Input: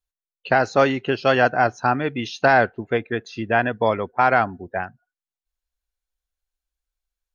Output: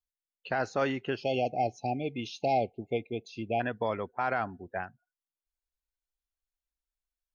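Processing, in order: 0.69–1.54 s: band-stop 4 kHz, Q 9.8; 1.22–3.60 s: spectral selection erased 850–2100 Hz; peak limiter -9.5 dBFS, peak gain reduction 5 dB; trim -9 dB

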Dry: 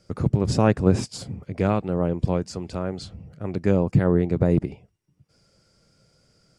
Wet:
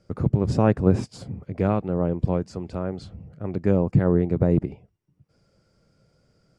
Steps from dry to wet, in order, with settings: treble shelf 2.5 kHz -11 dB

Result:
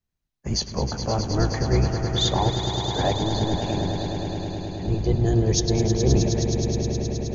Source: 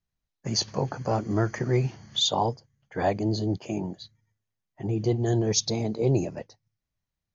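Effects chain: octave divider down 1 oct, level +2 dB; echo with a slow build-up 105 ms, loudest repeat 5, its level -10 dB

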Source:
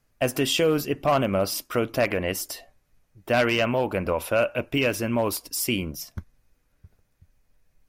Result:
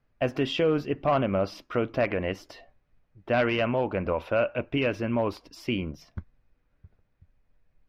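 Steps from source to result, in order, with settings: distance through air 260 m; trim -1.5 dB

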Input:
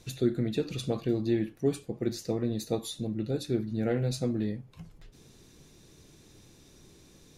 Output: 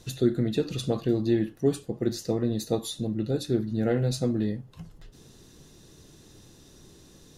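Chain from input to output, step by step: band-stop 2.3 kHz, Q 6.1; trim +3.5 dB

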